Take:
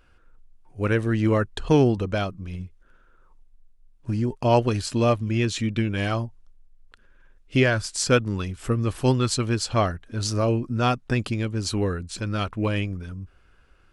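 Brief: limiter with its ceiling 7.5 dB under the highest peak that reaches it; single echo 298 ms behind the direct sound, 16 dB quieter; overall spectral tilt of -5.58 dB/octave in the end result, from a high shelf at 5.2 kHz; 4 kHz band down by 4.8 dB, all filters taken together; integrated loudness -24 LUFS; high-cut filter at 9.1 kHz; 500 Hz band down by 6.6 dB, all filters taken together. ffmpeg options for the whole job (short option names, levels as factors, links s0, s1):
-af "lowpass=9100,equalizer=f=500:t=o:g=-8.5,equalizer=f=4000:t=o:g=-8,highshelf=f=5200:g=4,alimiter=limit=0.158:level=0:latency=1,aecho=1:1:298:0.158,volume=1.58"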